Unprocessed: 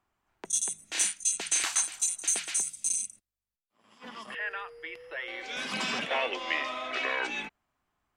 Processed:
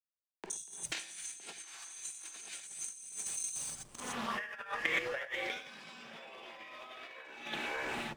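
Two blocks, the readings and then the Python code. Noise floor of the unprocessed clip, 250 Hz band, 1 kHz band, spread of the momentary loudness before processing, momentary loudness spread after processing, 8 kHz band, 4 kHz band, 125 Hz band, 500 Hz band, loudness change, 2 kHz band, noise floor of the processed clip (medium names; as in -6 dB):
under -85 dBFS, -3.5 dB, -6.0 dB, 13 LU, 13 LU, -12.0 dB, -8.5 dB, -1.0 dB, -5.5 dB, -10.0 dB, -5.5 dB, -83 dBFS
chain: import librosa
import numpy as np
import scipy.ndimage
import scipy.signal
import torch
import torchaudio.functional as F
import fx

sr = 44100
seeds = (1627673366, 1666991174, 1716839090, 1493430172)

y = fx.reverse_delay_fb(x, sr, ms=286, feedback_pct=40, wet_db=-9.0)
y = fx.backlash(y, sr, play_db=-45.5)
y = fx.level_steps(y, sr, step_db=19)
y = fx.rev_gated(y, sr, seeds[0], gate_ms=140, shape='rising', drr_db=-5.5)
y = fx.over_compress(y, sr, threshold_db=-42.0, ratio=-0.5)
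y = fx.doppler_dist(y, sr, depth_ms=0.23)
y = y * 10.0 ** (2.5 / 20.0)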